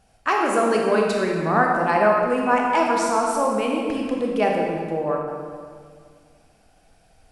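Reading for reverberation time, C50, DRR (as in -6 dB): 2.0 s, 0.5 dB, -1.0 dB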